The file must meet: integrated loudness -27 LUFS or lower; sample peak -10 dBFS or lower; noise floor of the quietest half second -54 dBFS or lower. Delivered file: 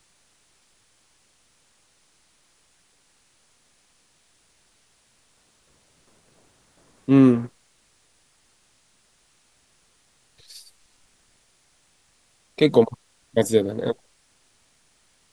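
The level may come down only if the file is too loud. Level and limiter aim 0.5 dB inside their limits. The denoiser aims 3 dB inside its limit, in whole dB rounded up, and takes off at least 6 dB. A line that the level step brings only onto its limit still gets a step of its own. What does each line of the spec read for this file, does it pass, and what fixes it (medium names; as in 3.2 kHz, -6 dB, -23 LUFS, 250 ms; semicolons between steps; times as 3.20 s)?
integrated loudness -20.5 LUFS: fail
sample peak -3.5 dBFS: fail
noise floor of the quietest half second -63 dBFS: pass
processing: trim -7 dB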